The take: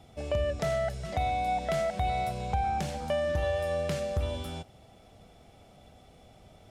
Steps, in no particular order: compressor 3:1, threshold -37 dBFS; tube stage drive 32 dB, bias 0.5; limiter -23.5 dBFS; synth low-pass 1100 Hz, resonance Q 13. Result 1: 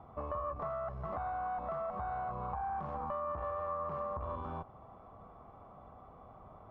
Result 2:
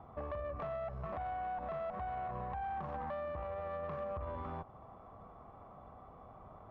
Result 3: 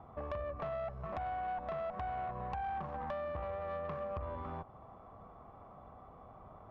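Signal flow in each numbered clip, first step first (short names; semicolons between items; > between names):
limiter > tube stage > synth low-pass > compressor; synth low-pass > limiter > compressor > tube stage; synth low-pass > compressor > tube stage > limiter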